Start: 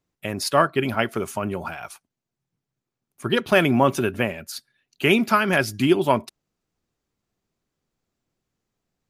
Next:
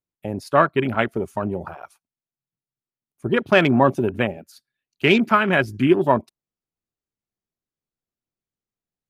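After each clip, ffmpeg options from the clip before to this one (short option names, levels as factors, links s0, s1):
-af "afwtdn=0.0398,volume=1.26"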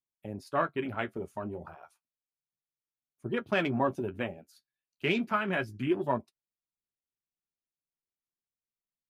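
-af "flanger=delay=7.8:depth=5.6:regen=-40:speed=0.32:shape=triangular,volume=0.376"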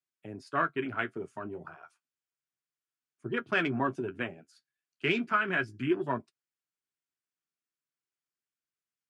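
-af "highpass=f=120:w=0.5412,highpass=f=120:w=1.3066,equalizer=f=200:t=q:w=4:g=-8,equalizer=f=550:t=q:w=4:g=-9,equalizer=f=840:t=q:w=4:g=-7,equalizer=f=1500:t=q:w=4:g=5,equalizer=f=3900:t=q:w=4:g=-5,equalizer=f=6100:t=q:w=4:g=-3,lowpass=f=8600:w=0.5412,lowpass=f=8600:w=1.3066,volume=1.19"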